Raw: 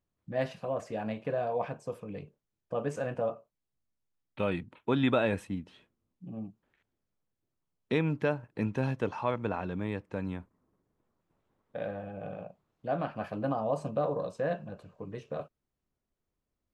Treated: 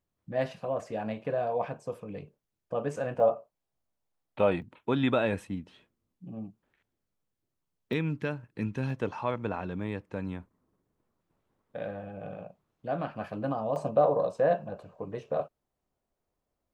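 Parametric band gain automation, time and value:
parametric band 700 Hz 1.4 octaves
+2 dB
from 0:03.20 +10 dB
from 0:04.62 +0.5 dB
from 0:07.93 −8 dB
from 0:08.90 −0.5 dB
from 0:13.76 +9 dB

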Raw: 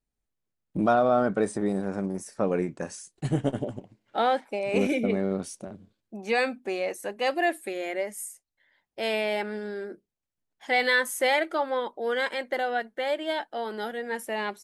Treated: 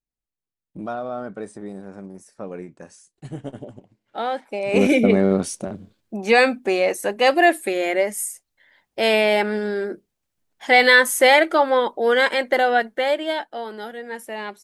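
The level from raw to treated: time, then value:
0:03.29 −7.5 dB
0:04.34 −1 dB
0:04.94 +10 dB
0:12.85 +10 dB
0:13.79 −0.5 dB

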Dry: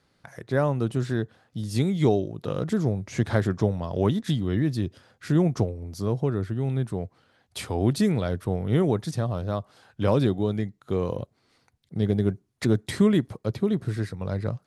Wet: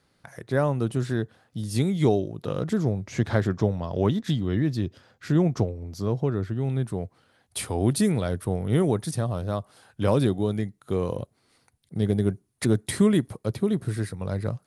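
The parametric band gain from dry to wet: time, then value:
parametric band 9,800 Hz 0.43 octaves
0:02.24 +6 dB
0:03.28 −6 dB
0:06.47 −6 dB
0:06.80 +4.5 dB
0:07.65 +13 dB

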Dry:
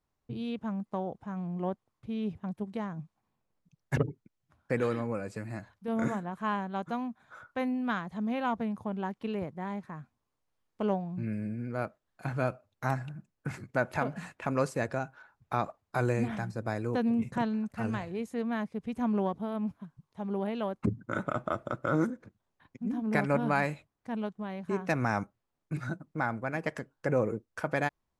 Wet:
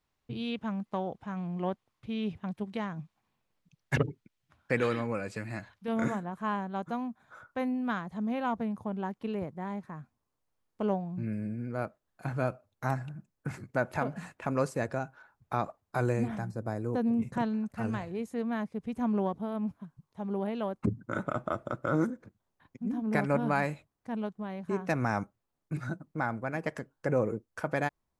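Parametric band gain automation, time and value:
parametric band 2,900 Hz 2 octaves
0:05.86 +7.5 dB
0:06.30 −3 dB
0:16.08 −3 dB
0:16.78 −13 dB
0:17.35 −2.5 dB

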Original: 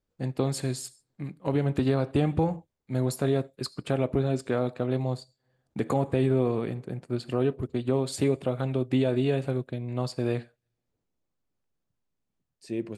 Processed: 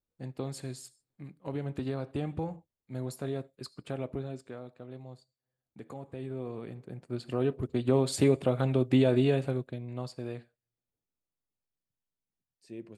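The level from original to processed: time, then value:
0:04.11 −9.5 dB
0:04.63 −17.5 dB
0:06.02 −17.5 dB
0:07.10 −6 dB
0:07.98 +1 dB
0:09.18 +1 dB
0:10.37 −11.5 dB

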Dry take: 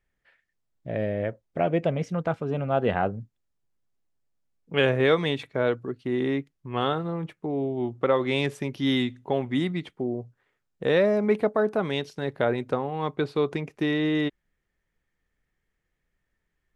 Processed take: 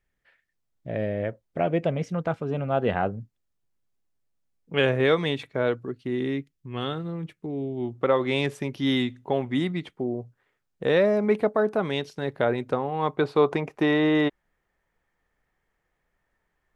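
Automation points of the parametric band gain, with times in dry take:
parametric band 850 Hz 1.8 octaves
0:05.77 −0.5 dB
0:06.52 −9.5 dB
0:07.66 −9.5 dB
0:08.08 +1 dB
0:12.76 +1 dB
0:13.51 +11 dB

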